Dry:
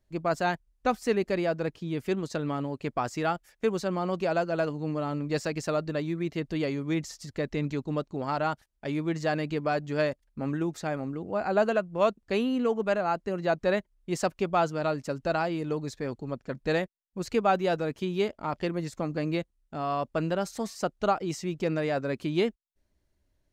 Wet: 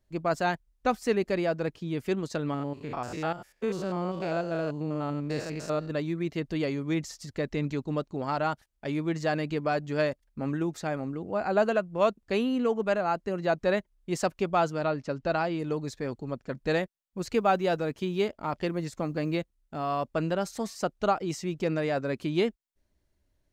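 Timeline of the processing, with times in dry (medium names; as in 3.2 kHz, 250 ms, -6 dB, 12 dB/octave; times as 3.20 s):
2.54–5.91 s: spectrogram pixelated in time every 100 ms
14.83–15.58 s: low-pass 3.8 kHz -> 6.9 kHz
17.18–20.04 s: short-mantissa float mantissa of 6-bit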